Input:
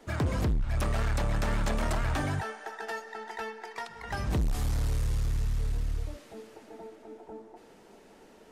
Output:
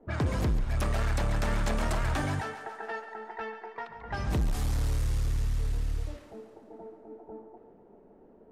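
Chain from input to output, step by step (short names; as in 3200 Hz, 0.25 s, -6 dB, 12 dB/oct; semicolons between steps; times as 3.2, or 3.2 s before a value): low-pass opened by the level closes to 550 Hz, open at -26.5 dBFS; thinning echo 0.14 s, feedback 60%, high-pass 260 Hz, level -11.5 dB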